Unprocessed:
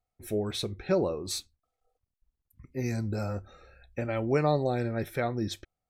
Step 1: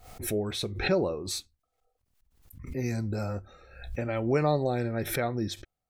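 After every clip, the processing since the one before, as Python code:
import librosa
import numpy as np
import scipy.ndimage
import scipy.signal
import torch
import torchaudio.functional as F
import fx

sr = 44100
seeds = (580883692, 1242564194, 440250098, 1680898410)

y = fx.pre_swell(x, sr, db_per_s=82.0)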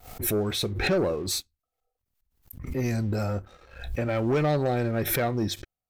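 y = fx.peak_eq(x, sr, hz=14000.0, db=10.0, octaves=0.24)
y = fx.leveller(y, sr, passes=2)
y = F.gain(torch.from_numpy(y), -2.5).numpy()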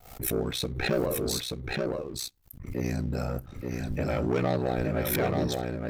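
y = x * np.sin(2.0 * np.pi * 31.0 * np.arange(len(x)) / sr)
y = y + 10.0 ** (-3.5 / 20.0) * np.pad(y, (int(880 * sr / 1000.0), 0))[:len(y)]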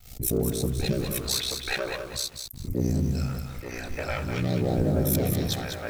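y = fx.phaser_stages(x, sr, stages=2, low_hz=140.0, high_hz=2300.0, hz=0.46, feedback_pct=45)
y = fx.echo_crushed(y, sr, ms=199, feedback_pct=35, bits=8, wet_db=-6.0)
y = F.gain(torch.from_numpy(y), 3.0).numpy()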